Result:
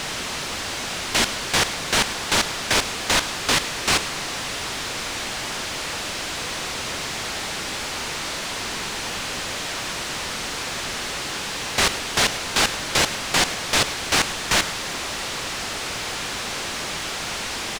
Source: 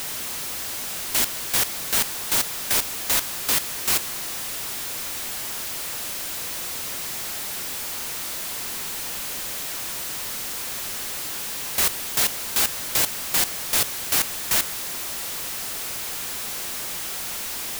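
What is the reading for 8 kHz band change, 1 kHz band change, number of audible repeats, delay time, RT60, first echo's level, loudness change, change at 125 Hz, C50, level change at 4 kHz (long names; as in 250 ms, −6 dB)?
−0.5 dB, +8.0 dB, 1, 105 ms, no reverb audible, −15.5 dB, +1.0 dB, +8.5 dB, no reverb audible, +6.0 dB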